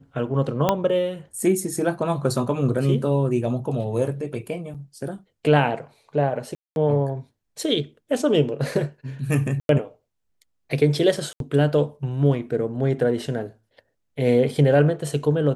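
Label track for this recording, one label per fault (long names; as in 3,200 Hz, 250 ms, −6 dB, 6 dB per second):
0.690000	0.690000	click −5 dBFS
4.740000	4.750000	drop-out 6.5 ms
6.550000	6.760000	drop-out 211 ms
9.600000	9.690000	drop-out 92 ms
11.330000	11.400000	drop-out 72 ms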